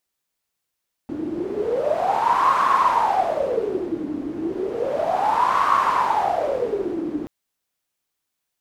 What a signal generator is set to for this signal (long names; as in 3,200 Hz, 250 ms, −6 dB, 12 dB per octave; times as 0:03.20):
wind from filtered noise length 6.18 s, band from 300 Hz, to 1,100 Hz, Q 12, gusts 2, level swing 9.5 dB